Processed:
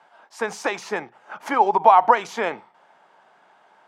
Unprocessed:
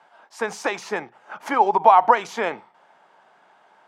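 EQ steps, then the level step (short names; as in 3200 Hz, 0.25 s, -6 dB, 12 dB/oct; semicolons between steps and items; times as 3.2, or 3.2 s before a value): none; 0.0 dB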